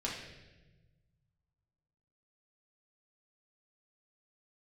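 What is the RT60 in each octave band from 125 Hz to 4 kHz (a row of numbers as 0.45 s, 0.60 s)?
2.3 s, 1.8 s, 1.4 s, 0.95 s, 1.1 s, 1.0 s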